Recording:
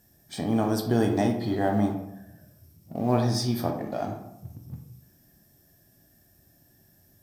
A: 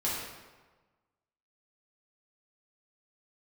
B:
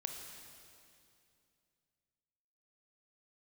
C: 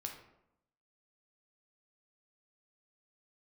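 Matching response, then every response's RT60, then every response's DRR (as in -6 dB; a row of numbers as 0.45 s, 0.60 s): C; 1.3 s, 2.5 s, 0.80 s; -8.0 dB, 3.0 dB, 2.0 dB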